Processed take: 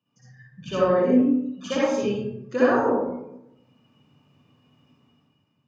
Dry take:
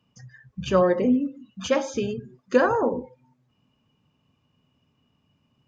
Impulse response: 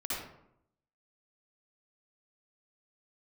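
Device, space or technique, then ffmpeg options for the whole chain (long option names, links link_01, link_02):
far laptop microphone: -filter_complex "[1:a]atrim=start_sample=2205[link_01];[0:a][link_01]afir=irnorm=-1:irlink=0,highpass=frequency=100:width=0.5412,highpass=frequency=100:width=1.3066,dynaudnorm=framelen=110:gausssize=11:maxgain=11dB,volume=-7dB"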